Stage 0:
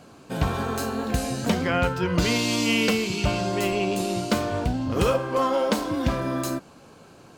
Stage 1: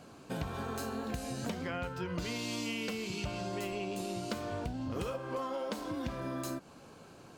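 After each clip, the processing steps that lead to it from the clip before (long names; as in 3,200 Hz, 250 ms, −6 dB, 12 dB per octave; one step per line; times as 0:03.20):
downward compressor, threshold −30 dBFS, peak gain reduction 12.5 dB
level −4.5 dB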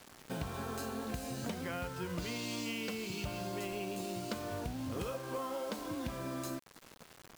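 bit-depth reduction 8 bits, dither none
level −2 dB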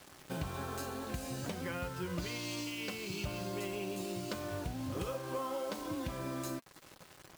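notch comb filter 230 Hz
level +1.5 dB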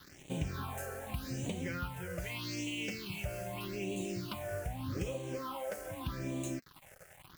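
all-pass phaser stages 6, 0.82 Hz, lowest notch 260–1,400 Hz
level +2.5 dB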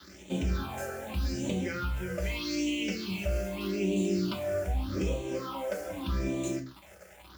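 convolution reverb, pre-delay 3 ms, DRR 2 dB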